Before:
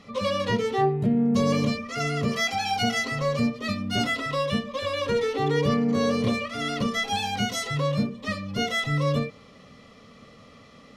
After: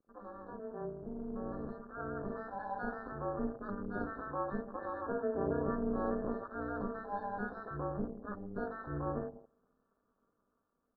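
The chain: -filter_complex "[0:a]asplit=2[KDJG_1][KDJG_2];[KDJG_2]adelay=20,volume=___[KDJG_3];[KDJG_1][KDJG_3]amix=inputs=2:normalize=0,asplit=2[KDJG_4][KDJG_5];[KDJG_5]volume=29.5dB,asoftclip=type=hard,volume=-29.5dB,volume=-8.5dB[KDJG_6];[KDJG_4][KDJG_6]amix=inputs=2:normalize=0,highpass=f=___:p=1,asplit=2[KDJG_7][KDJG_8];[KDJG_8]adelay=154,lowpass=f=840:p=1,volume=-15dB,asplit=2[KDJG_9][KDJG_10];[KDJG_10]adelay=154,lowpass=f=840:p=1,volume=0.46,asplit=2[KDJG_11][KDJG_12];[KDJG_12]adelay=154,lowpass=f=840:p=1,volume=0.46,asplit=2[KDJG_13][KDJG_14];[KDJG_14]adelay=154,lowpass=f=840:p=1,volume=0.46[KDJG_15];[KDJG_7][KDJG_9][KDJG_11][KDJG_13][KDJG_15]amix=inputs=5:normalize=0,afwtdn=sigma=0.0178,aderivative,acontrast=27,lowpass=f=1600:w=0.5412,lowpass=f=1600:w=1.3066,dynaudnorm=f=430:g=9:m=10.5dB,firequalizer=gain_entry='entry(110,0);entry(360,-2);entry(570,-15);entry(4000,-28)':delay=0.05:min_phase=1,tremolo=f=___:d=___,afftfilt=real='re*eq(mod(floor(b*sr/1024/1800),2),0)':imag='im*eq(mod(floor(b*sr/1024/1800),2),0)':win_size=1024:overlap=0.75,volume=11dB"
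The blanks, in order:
-7dB, 330, 210, 0.947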